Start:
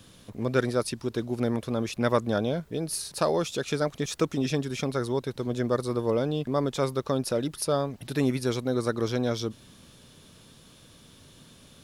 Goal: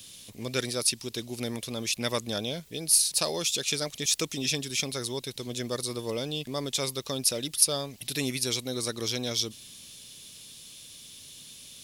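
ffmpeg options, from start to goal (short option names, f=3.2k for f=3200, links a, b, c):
-af "aexciter=amount=6.9:drive=2.6:freq=2.1k,volume=-7dB"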